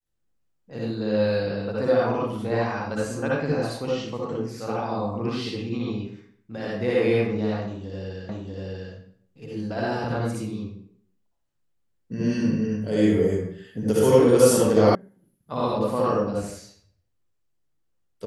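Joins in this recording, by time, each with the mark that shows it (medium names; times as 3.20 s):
8.29 s: repeat of the last 0.64 s
14.95 s: sound stops dead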